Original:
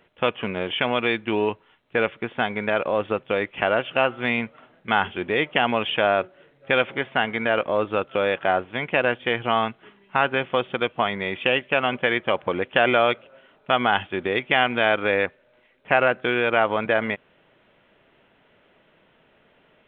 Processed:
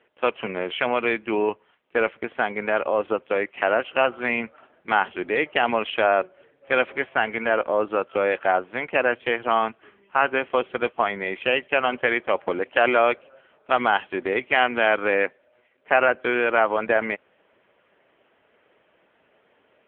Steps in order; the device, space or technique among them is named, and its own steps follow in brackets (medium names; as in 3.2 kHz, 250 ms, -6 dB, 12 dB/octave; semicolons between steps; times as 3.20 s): telephone (band-pass 260–3100 Hz; trim +1.5 dB; AMR-NB 6.7 kbps 8 kHz)